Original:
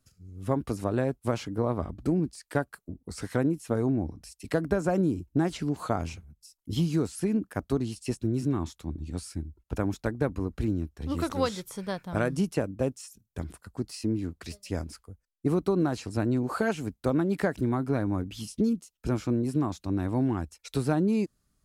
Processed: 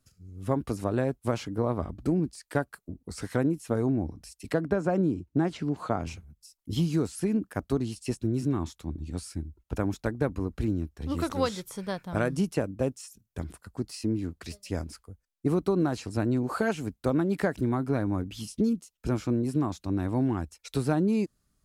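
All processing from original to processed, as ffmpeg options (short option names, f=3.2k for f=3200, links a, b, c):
-filter_complex "[0:a]asettb=1/sr,asplit=3[a][b][c];[a]atrim=end=4.534[d];[b]atrim=start=4.53:end=6.07,asetpts=PTS-STARTPTS,afade=t=in:d=0.004:c=qsin,afade=t=out:st=1.536:d=0.004:c=qsin,highpass=87,aemphasis=mode=reproduction:type=50kf[e];[c]atrim=start=6.066[f];[d][e]acrossfade=d=0.004:c1=hsin:c2=qsin[g];[g][f]acrossfade=d=0.004:c1=qsin:c2=hsin"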